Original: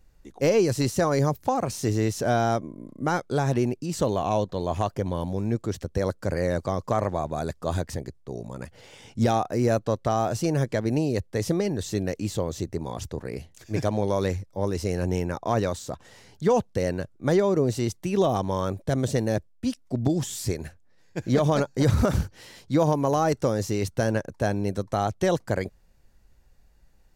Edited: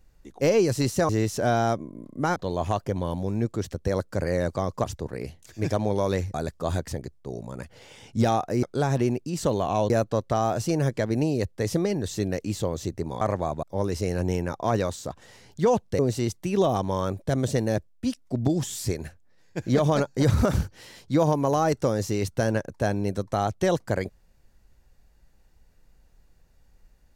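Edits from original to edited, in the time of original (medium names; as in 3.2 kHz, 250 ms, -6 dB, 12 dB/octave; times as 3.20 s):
1.09–1.92 s: delete
3.19–4.46 s: move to 9.65 s
6.94–7.36 s: swap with 12.96–14.46 s
16.82–17.59 s: delete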